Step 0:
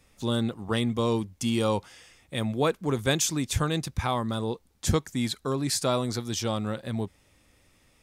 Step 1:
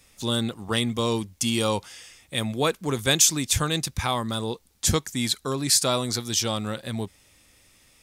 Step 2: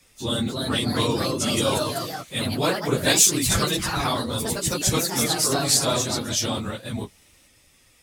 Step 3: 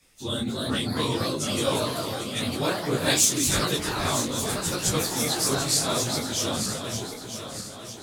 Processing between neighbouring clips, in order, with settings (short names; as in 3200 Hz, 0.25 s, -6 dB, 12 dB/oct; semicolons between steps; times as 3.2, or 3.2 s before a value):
high shelf 2200 Hz +10 dB
phase scrambler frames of 50 ms; echoes that change speed 0.322 s, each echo +2 st, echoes 3
regenerating reverse delay 0.476 s, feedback 67%, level -8 dB; detuned doubles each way 57 cents